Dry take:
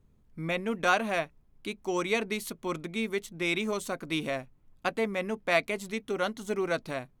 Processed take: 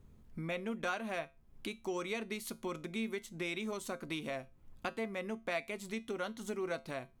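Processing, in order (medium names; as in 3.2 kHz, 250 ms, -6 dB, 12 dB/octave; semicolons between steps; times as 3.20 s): compression 2.5:1, threshold -47 dBFS, peak gain reduction 18 dB; feedback comb 75 Hz, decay 0.27 s, harmonics odd, mix 50%; trim +9 dB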